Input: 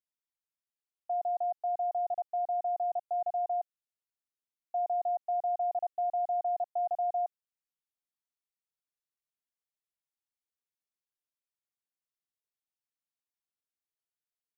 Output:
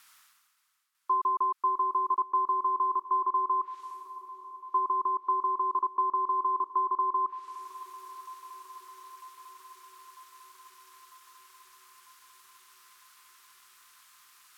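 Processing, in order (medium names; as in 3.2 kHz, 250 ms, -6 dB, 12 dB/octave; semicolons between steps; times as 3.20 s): ring modulator 330 Hz; resonant low shelf 790 Hz -14 dB, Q 3; reverse; upward compressor, threshold -41 dBFS; reverse; low-pass that closes with the level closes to 880 Hz, closed at -30 dBFS; shuffle delay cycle 948 ms, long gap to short 1.5:1, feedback 63%, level -17 dB; trim +9 dB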